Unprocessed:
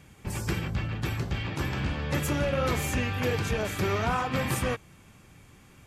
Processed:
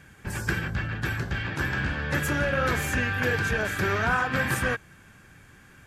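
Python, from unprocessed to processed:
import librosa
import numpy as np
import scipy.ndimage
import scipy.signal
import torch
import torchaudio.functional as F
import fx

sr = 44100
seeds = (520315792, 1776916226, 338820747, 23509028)

y = fx.peak_eq(x, sr, hz=1600.0, db=15.0, octaves=0.32)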